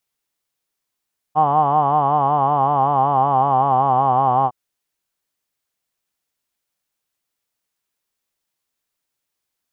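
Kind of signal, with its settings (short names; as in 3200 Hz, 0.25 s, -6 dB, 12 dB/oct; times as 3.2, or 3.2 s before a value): formant vowel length 3.16 s, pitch 149 Hz, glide -2.5 st, F1 780 Hz, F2 1100 Hz, F3 3000 Hz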